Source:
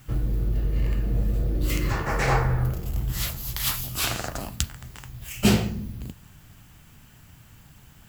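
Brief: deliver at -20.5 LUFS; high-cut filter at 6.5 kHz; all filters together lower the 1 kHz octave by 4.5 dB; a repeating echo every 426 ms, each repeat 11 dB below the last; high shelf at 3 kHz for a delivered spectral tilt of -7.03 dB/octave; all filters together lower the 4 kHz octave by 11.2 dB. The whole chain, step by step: low-pass 6.5 kHz; peaking EQ 1 kHz -4.5 dB; treble shelf 3 kHz -8.5 dB; peaking EQ 4 kHz -7.5 dB; feedback delay 426 ms, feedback 28%, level -11 dB; trim +7.5 dB

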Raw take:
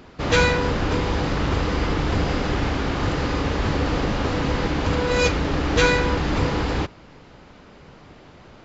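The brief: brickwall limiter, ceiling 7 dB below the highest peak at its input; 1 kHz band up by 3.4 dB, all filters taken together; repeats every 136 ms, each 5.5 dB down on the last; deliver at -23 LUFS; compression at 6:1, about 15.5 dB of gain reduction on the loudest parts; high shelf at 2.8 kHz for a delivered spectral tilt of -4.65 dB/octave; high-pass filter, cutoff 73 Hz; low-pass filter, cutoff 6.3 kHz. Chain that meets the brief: high-pass 73 Hz; low-pass 6.3 kHz; peaking EQ 1 kHz +4.5 dB; treble shelf 2.8 kHz -3 dB; compression 6:1, threshold -30 dBFS; peak limiter -26 dBFS; feedback delay 136 ms, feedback 53%, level -5.5 dB; trim +11 dB

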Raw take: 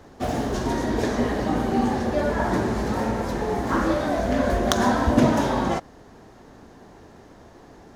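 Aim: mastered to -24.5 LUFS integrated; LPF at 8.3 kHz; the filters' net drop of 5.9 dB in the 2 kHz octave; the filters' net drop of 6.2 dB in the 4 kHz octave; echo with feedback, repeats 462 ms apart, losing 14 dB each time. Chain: low-pass 8.3 kHz; peaking EQ 2 kHz -7 dB; peaking EQ 4 kHz -5.5 dB; feedback delay 462 ms, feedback 20%, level -14 dB; trim -0.5 dB

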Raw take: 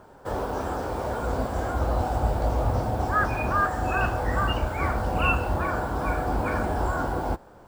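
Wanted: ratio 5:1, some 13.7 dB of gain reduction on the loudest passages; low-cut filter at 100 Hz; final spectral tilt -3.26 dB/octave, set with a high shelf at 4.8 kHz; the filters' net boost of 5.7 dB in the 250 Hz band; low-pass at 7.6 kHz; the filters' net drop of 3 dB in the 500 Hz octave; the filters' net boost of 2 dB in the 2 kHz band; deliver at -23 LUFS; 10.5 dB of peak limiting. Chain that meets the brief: high-pass 100 Hz; low-pass 7.6 kHz; peaking EQ 250 Hz +9 dB; peaking EQ 500 Hz -6.5 dB; peaking EQ 2 kHz +4.5 dB; treble shelf 4.8 kHz -7 dB; compression 5:1, threshold -34 dBFS; trim +19.5 dB; peak limiter -15 dBFS

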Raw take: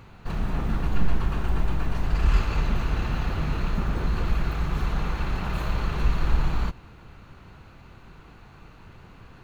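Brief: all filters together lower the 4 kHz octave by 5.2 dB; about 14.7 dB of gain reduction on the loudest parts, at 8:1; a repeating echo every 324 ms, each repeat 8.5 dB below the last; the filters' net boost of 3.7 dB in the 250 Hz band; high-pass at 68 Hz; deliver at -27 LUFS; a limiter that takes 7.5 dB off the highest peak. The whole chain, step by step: high-pass 68 Hz; peaking EQ 250 Hz +5.5 dB; peaking EQ 4 kHz -7 dB; compression 8:1, threshold -37 dBFS; peak limiter -34.5 dBFS; feedback delay 324 ms, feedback 38%, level -8.5 dB; trim +17.5 dB

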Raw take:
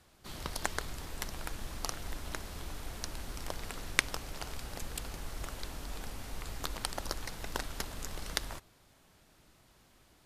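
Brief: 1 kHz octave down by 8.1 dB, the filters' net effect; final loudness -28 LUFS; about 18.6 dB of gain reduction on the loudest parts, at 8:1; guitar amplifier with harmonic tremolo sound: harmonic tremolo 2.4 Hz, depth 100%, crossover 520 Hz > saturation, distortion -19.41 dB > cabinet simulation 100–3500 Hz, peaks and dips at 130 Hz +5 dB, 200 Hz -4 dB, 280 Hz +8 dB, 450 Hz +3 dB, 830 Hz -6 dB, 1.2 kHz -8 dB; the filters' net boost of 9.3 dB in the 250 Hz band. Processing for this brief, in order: peaking EQ 250 Hz +7 dB; peaking EQ 1 kHz -4.5 dB; compression 8:1, threshold -45 dBFS; harmonic tremolo 2.4 Hz, depth 100%, crossover 520 Hz; saturation -34.5 dBFS; cabinet simulation 100–3500 Hz, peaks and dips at 130 Hz +5 dB, 200 Hz -4 dB, 280 Hz +8 dB, 450 Hz +3 dB, 830 Hz -6 dB, 1.2 kHz -8 dB; trim +29.5 dB

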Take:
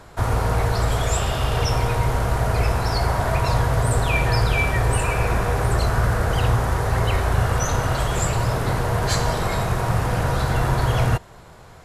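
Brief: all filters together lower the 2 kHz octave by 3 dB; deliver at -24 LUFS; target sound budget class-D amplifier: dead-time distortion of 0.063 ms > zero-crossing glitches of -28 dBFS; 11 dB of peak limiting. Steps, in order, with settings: peaking EQ 2 kHz -4 dB; peak limiter -17.5 dBFS; dead-time distortion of 0.063 ms; zero-crossing glitches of -28 dBFS; trim +3 dB

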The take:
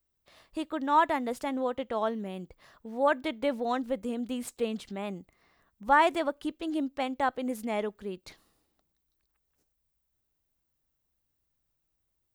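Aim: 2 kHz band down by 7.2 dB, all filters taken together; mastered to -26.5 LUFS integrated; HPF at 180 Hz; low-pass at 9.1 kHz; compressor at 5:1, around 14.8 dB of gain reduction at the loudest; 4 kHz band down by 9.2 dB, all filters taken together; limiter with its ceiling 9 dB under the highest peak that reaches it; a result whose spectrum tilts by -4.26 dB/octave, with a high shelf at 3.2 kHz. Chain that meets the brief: high-pass 180 Hz; low-pass 9.1 kHz; peaking EQ 2 kHz -7 dB; treble shelf 3.2 kHz -6 dB; peaking EQ 4 kHz -5 dB; compression 5:1, threshold -37 dBFS; trim +18 dB; peak limiter -17 dBFS

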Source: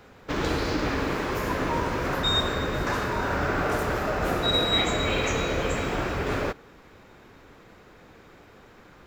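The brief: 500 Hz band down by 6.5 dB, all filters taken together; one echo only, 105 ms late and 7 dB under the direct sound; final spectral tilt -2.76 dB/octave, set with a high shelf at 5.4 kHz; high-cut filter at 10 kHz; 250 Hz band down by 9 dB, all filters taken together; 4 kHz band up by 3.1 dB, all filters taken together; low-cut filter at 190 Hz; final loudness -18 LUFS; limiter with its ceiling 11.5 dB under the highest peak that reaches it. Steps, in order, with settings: high-pass 190 Hz; low-pass 10 kHz; peaking EQ 250 Hz -8.5 dB; peaking EQ 500 Hz -5.5 dB; peaking EQ 4 kHz +5 dB; treble shelf 5.4 kHz -5 dB; peak limiter -23 dBFS; delay 105 ms -7 dB; trim +12 dB

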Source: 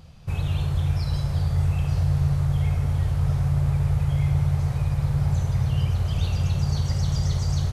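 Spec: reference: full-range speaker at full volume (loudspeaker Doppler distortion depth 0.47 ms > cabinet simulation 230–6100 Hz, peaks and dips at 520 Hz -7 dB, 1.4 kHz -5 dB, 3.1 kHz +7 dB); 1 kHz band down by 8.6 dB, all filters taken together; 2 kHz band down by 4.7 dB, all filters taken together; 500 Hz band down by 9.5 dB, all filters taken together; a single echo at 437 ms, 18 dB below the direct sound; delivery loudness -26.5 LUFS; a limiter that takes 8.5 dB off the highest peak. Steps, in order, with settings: peaking EQ 500 Hz -6 dB; peaking EQ 1 kHz -6.5 dB; peaking EQ 2 kHz -5 dB; peak limiter -20.5 dBFS; delay 437 ms -18 dB; loudspeaker Doppler distortion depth 0.47 ms; cabinet simulation 230–6100 Hz, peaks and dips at 520 Hz -7 dB, 1.4 kHz -5 dB, 3.1 kHz +7 dB; trim +13 dB

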